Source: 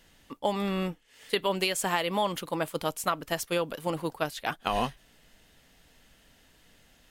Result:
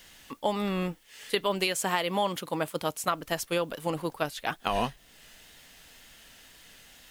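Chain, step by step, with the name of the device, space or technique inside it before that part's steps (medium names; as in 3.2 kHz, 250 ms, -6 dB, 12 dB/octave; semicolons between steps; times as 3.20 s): noise-reduction cassette on a plain deck (tape noise reduction on one side only encoder only; wow and flutter; white noise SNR 34 dB); 1.67–3.08 s: high-pass 69 Hz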